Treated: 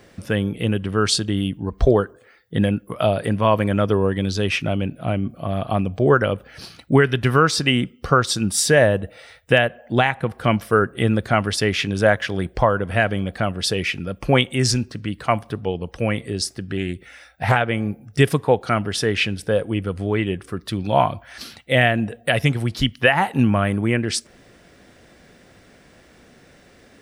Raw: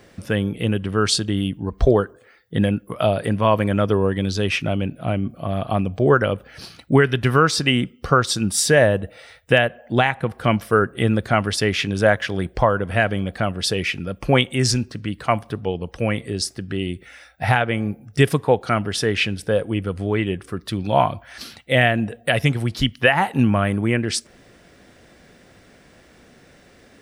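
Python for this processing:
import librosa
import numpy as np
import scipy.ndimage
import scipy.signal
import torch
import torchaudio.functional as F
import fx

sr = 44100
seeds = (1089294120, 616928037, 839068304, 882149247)

y = fx.doppler_dist(x, sr, depth_ms=0.39, at=(16.77, 17.57))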